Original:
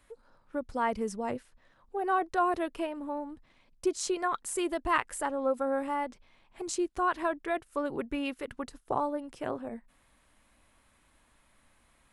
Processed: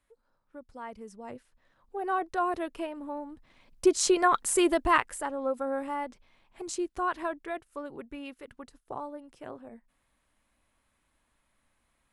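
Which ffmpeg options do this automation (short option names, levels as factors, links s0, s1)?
-af "volume=2.37,afade=t=in:st=1.1:d=0.94:silence=0.298538,afade=t=in:st=3.31:d=0.65:silence=0.354813,afade=t=out:st=4.68:d=0.51:silence=0.354813,afade=t=out:st=7.09:d=0.83:silence=0.473151"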